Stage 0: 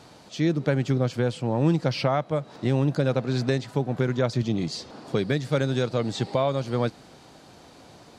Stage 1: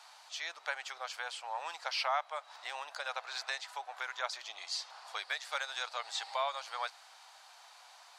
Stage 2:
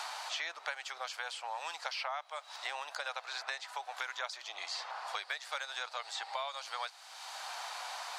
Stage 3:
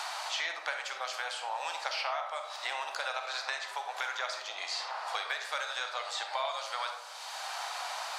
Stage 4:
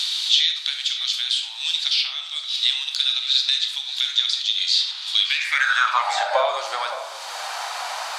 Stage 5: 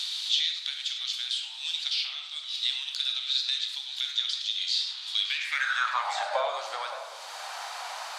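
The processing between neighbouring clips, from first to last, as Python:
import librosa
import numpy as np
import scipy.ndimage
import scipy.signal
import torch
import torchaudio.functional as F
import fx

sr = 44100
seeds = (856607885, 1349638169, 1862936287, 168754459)

y1 = scipy.signal.sosfilt(scipy.signal.butter(6, 780.0, 'highpass', fs=sr, output='sos'), x)
y1 = y1 * librosa.db_to_amplitude(-2.5)
y2 = fx.band_squash(y1, sr, depth_pct=100)
y2 = y2 * librosa.db_to_amplitude(-1.5)
y3 = fx.rev_freeverb(y2, sr, rt60_s=1.2, hf_ratio=0.3, predelay_ms=5, drr_db=3.5)
y3 = y3 * librosa.db_to_amplitude(3.0)
y4 = fx.filter_sweep_highpass(y3, sr, from_hz=3600.0, to_hz=75.0, start_s=5.17, end_s=7.61, q=6.3)
y4 = y4 + 10.0 ** (-13.5 / 20.0) * np.pad(y4, (int(570 * sr / 1000.0), 0))[:len(y4)]
y4 = y4 * librosa.db_to_amplitude(8.5)
y5 = scipy.signal.sosfilt(scipy.signal.butter(4, 340.0, 'highpass', fs=sr, output='sos'), y4)
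y5 = fx.echo_warbled(y5, sr, ms=106, feedback_pct=54, rate_hz=2.8, cents=196, wet_db=-12.5)
y5 = y5 * librosa.db_to_amplitude(-8.5)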